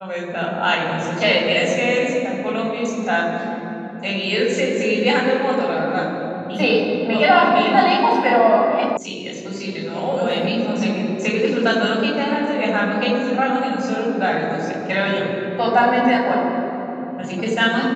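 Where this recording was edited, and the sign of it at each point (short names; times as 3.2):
8.97 sound cut off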